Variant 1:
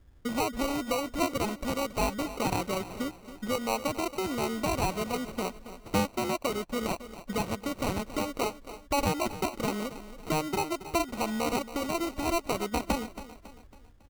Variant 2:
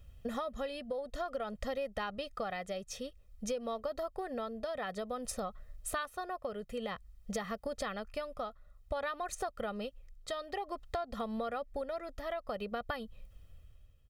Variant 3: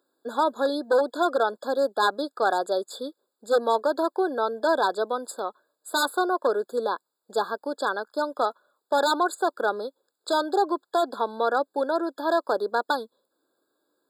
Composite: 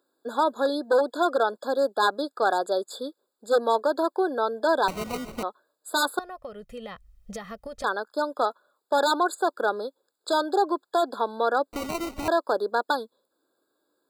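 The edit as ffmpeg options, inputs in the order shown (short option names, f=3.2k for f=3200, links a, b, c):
-filter_complex "[0:a]asplit=2[a][b];[2:a]asplit=4[c][d][e][f];[c]atrim=end=4.882[g];[a]atrim=start=4.878:end=5.432[h];[d]atrim=start=5.428:end=6.192[i];[1:a]atrim=start=6.188:end=7.842[j];[e]atrim=start=7.838:end=11.732[k];[b]atrim=start=11.728:end=12.282[l];[f]atrim=start=12.278[m];[g][h]acrossfade=d=0.004:c1=hsin:c2=hsin[n];[n][i]acrossfade=d=0.004:c1=hsin:c2=hsin[o];[o][j]acrossfade=d=0.004:c1=hsin:c2=hsin[p];[p][k]acrossfade=d=0.004:c1=hsin:c2=hsin[q];[q][l]acrossfade=d=0.004:c1=hsin:c2=hsin[r];[r][m]acrossfade=d=0.004:c1=hsin:c2=hsin"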